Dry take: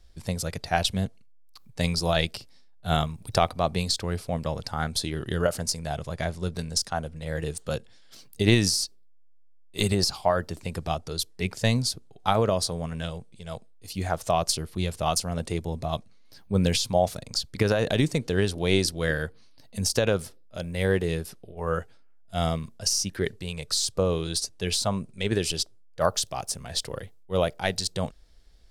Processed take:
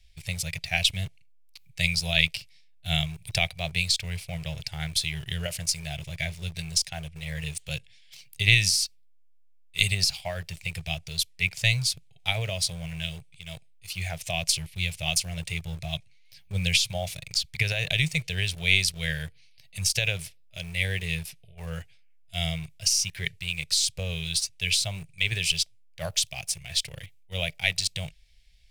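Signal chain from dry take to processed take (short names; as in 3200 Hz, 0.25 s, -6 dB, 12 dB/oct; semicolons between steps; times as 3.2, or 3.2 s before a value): EQ curve 160 Hz 0 dB, 240 Hz -27 dB, 670 Hz -8 dB, 1200 Hz -20 dB, 2300 Hz +13 dB, 4400 Hz +3 dB; in parallel at -10.5 dB: bit-crush 6-bit; on the sum: gain -3.5 dB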